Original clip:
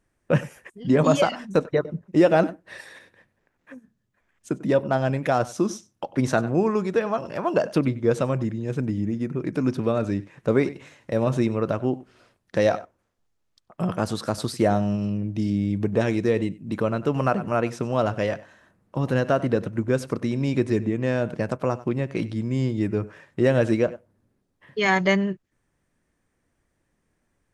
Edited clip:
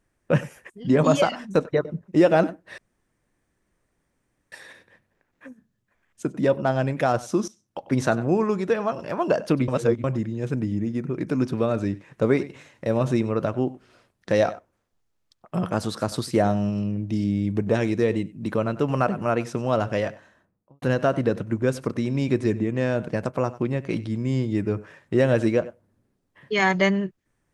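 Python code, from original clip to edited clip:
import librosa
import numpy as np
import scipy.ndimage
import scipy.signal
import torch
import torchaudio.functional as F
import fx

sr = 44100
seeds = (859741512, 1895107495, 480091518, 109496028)

y = fx.studio_fade_out(x, sr, start_s=18.36, length_s=0.72)
y = fx.edit(y, sr, fx.insert_room_tone(at_s=2.78, length_s=1.74),
    fx.fade_in_from(start_s=5.74, length_s=0.43, floor_db=-16.5),
    fx.reverse_span(start_s=7.94, length_s=0.36), tone=tone)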